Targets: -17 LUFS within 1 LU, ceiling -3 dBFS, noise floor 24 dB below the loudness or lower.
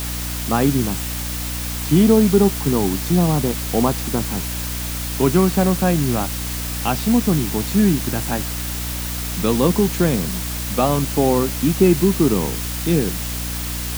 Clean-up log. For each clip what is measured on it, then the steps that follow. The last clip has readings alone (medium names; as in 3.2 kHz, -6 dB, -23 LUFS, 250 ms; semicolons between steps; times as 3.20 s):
hum 60 Hz; highest harmonic 300 Hz; hum level -26 dBFS; noise floor -26 dBFS; noise floor target -43 dBFS; loudness -19.0 LUFS; peak level -3.0 dBFS; loudness target -17.0 LUFS
-> hum notches 60/120/180/240/300 Hz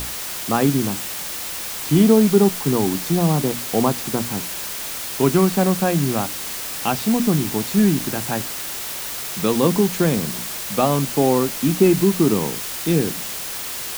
hum not found; noise floor -29 dBFS; noise floor target -44 dBFS
-> noise reduction 15 dB, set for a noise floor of -29 dBFS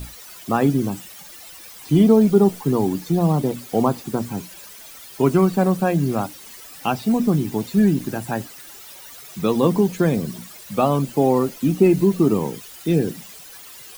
noise floor -41 dBFS; noise floor target -44 dBFS
-> noise reduction 6 dB, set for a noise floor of -41 dBFS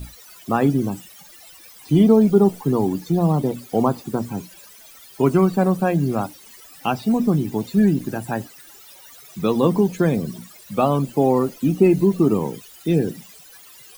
noise floor -46 dBFS; loudness -20.0 LUFS; peak level -3.5 dBFS; loudness target -17.0 LUFS
-> trim +3 dB; peak limiter -3 dBFS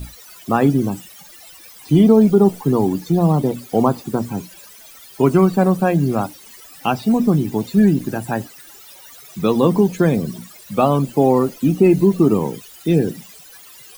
loudness -17.0 LUFS; peak level -3.0 dBFS; noise floor -43 dBFS